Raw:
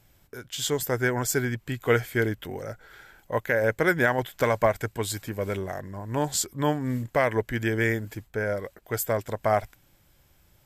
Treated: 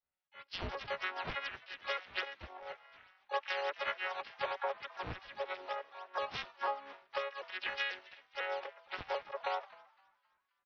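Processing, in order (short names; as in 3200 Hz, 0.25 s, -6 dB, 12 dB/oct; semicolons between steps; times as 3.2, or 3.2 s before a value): arpeggiated vocoder bare fifth, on F#3, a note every 0.247 s; Bessel high-pass 990 Hz, order 8; compressor 16:1, threshold -39 dBFS, peak gain reduction 15 dB; decimation with a swept rate 9×, swing 100% 3.4 Hz; downsampling 8000 Hz; frequency-shifting echo 0.261 s, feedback 63%, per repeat +110 Hz, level -17.5 dB; harmoniser -5 st -13 dB, +7 st -4 dB; three-band expander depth 70%; gain +4 dB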